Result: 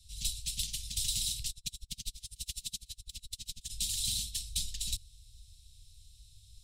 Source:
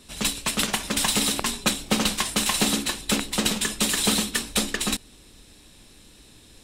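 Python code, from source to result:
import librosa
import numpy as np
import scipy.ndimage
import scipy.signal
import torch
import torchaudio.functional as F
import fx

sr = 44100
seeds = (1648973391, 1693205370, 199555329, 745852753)

y = scipy.signal.sosfilt(scipy.signal.cheby2(4, 70, [340.0, 1200.0], 'bandstop', fs=sr, output='sos'), x)
y = fx.high_shelf(y, sr, hz=3600.0, db=-10.5)
y = fx.tremolo_db(y, sr, hz=12.0, depth_db=34, at=(1.48, 3.69), fade=0.02)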